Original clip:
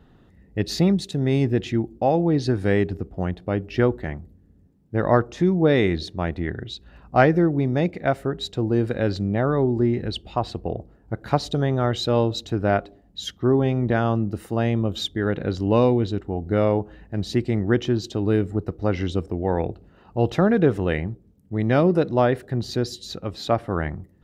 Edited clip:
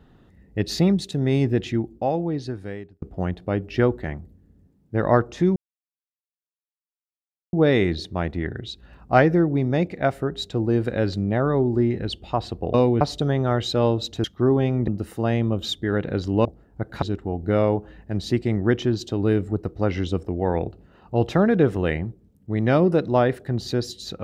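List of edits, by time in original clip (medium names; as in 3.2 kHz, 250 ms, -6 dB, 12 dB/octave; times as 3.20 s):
1.63–3.02 s: fade out
5.56 s: insert silence 1.97 s
10.77–11.34 s: swap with 15.78–16.05 s
12.57–13.27 s: delete
13.91–14.21 s: delete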